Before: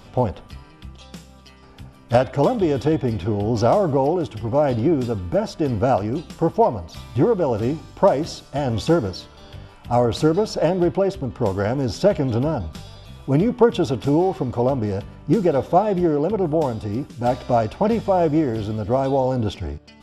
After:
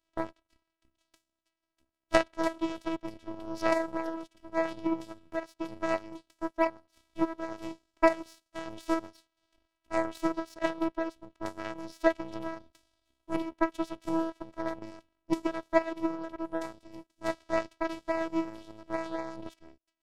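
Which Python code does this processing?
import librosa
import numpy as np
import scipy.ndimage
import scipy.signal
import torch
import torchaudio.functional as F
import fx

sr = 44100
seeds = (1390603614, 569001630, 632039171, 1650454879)

y = fx.robotise(x, sr, hz=326.0)
y = fx.power_curve(y, sr, exponent=2.0)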